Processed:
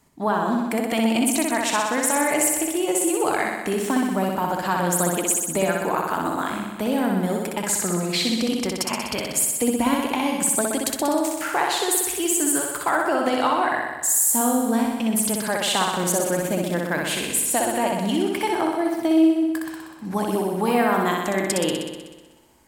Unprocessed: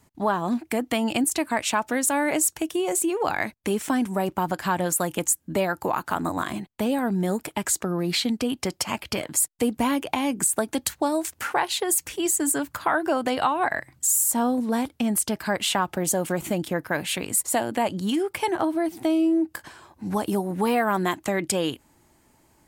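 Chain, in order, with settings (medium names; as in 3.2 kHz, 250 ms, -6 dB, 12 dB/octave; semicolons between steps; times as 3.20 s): peaking EQ 100 Hz -14.5 dB 0.38 oct; on a send: flutter echo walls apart 10.7 m, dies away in 1.2 s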